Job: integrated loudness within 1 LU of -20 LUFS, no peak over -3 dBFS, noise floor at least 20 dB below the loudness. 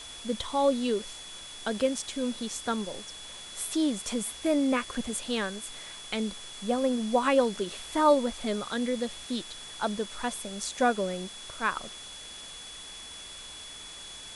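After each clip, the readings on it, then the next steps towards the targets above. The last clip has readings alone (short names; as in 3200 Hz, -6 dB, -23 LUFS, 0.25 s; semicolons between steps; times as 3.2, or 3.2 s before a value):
steady tone 3400 Hz; tone level -44 dBFS; noise floor -44 dBFS; noise floor target -50 dBFS; loudness -30.0 LUFS; peak -11.0 dBFS; loudness target -20.0 LUFS
-> notch 3400 Hz, Q 30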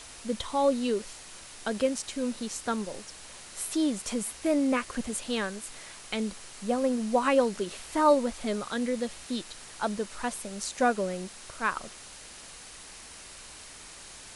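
steady tone none; noise floor -47 dBFS; noise floor target -50 dBFS
-> denoiser 6 dB, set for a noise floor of -47 dBFS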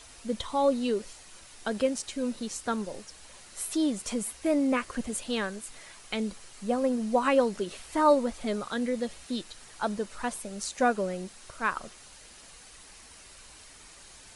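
noise floor -51 dBFS; loudness -30.0 LUFS; peak -11.0 dBFS; loudness target -20.0 LUFS
-> gain +10 dB; limiter -3 dBFS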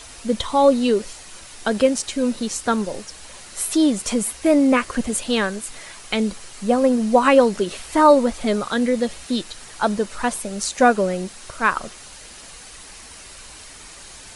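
loudness -20.0 LUFS; peak -3.0 dBFS; noise floor -41 dBFS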